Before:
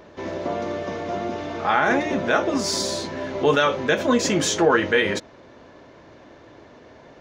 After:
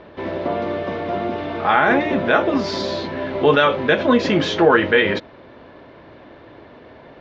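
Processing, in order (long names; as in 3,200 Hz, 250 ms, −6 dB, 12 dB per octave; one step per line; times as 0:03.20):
inverse Chebyshev low-pass filter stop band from 11,000 Hz, stop band 60 dB
level +4 dB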